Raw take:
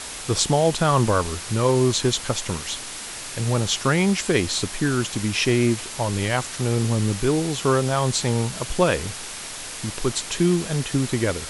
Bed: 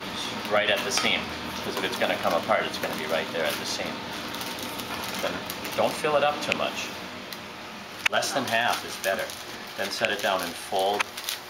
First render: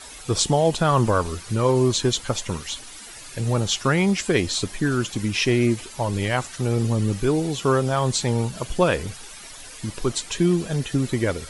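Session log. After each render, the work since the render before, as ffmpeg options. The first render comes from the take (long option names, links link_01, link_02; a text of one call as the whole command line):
ffmpeg -i in.wav -af "afftdn=noise_reduction=12:noise_floor=-35" out.wav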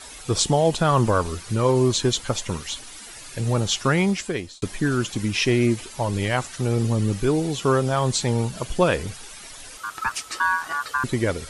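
ffmpeg -i in.wav -filter_complex "[0:a]asettb=1/sr,asplit=3[link_01][link_02][link_03];[link_01]atrim=end=9.774[link_04];[link_02]atrim=start=9.77:end=11.04,asetpts=PTS-STARTPTS,afade=type=in:duration=0.004:curve=qsin,afade=type=out:start_time=1.266:duration=0.004:curve=qsin,aeval=exprs='val(0)*sin(2*PI*1300*n/s)':channel_layout=same[link_05];[link_03]atrim=start=11.036[link_06];[link_04][link_05]acrossfade=duration=0.004:curve1=hsin:curve2=qsin[link_07];[link_07][link_06]acrossfade=duration=0.004:curve1=qsin:curve2=hsin,asplit=2[link_08][link_09];[link_08]atrim=end=4.62,asetpts=PTS-STARTPTS,afade=type=out:start_time=4:duration=0.62[link_10];[link_09]atrim=start=4.62,asetpts=PTS-STARTPTS,afade=type=in:duration=0.004:curve=hsin[link_11];[link_10][link_11]concat=n=2:v=0:a=1" out.wav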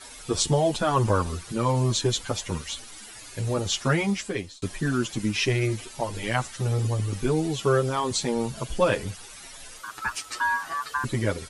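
ffmpeg -i in.wav -filter_complex "[0:a]asplit=2[link_01][link_02];[link_02]adelay=7.9,afreqshift=-0.87[link_03];[link_01][link_03]amix=inputs=2:normalize=1" out.wav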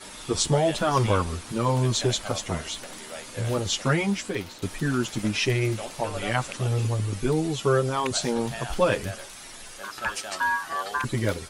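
ffmpeg -i in.wav -i bed.wav -filter_complex "[1:a]volume=-13dB[link_01];[0:a][link_01]amix=inputs=2:normalize=0" out.wav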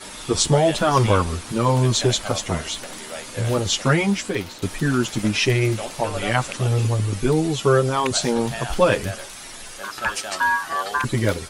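ffmpeg -i in.wav -af "volume=5dB" out.wav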